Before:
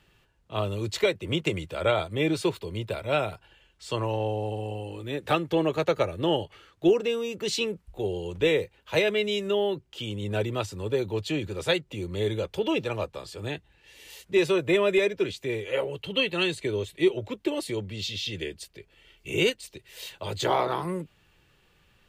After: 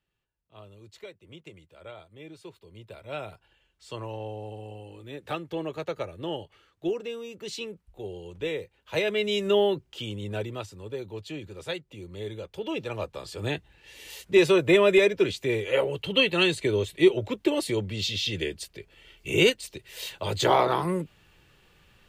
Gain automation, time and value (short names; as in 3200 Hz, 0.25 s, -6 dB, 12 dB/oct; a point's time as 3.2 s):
2.38 s -20 dB
3.32 s -8 dB
8.61 s -8 dB
9.57 s +4 dB
10.81 s -8.5 dB
12.46 s -8.5 dB
13.48 s +3.5 dB